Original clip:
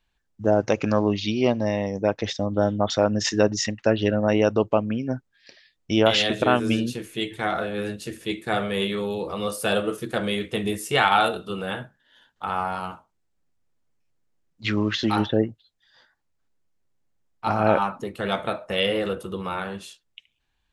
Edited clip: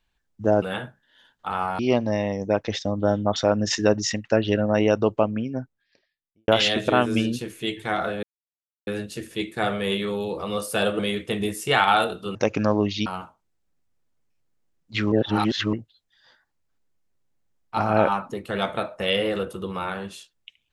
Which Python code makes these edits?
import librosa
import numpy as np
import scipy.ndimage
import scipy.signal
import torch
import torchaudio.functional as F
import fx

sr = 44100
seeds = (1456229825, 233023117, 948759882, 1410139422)

y = fx.studio_fade_out(x, sr, start_s=4.67, length_s=1.35)
y = fx.edit(y, sr, fx.swap(start_s=0.62, length_s=0.71, other_s=11.59, other_length_s=1.17),
    fx.insert_silence(at_s=7.77, length_s=0.64),
    fx.cut(start_s=9.89, length_s=0.34),
    fx.reverse_span(start_s=14.82, length_s=0.61), tone=tone)